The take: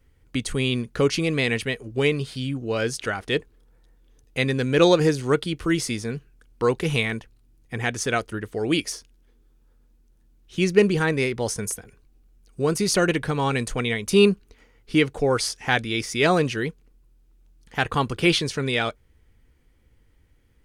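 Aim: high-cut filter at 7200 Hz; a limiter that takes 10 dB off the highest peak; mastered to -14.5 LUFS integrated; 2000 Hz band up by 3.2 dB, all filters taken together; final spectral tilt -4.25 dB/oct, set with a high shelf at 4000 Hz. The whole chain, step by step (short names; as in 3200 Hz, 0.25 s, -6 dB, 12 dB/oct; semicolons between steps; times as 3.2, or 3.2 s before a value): LPF 7200 Hz; bell 2000 Hz +5.5 dB; high shelf 4000 Hz -6 dB; gain +11 dB; limiter -2 dBFS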